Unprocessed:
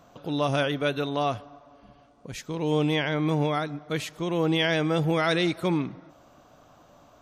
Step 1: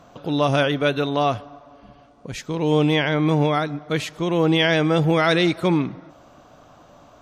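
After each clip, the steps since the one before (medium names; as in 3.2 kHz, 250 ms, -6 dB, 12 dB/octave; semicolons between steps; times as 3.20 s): treble shelf 11 kHz -10.5 dB; trim +6 dB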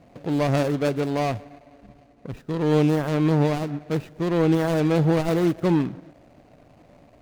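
median filter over 41 samples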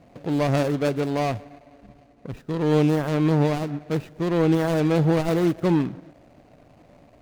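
no audible change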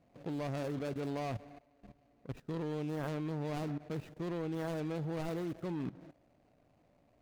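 level held to a coarse grid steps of 16 dB; trim -5 dB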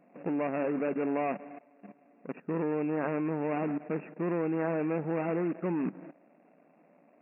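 brick-wall FIR band-pass 160–2800 Hz; trim +8 dB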